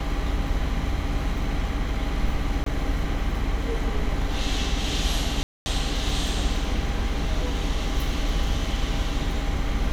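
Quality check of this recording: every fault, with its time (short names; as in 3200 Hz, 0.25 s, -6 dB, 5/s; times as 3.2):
2.64–2.66 gap 23 ms
5.43–5.66 gap 0.23 s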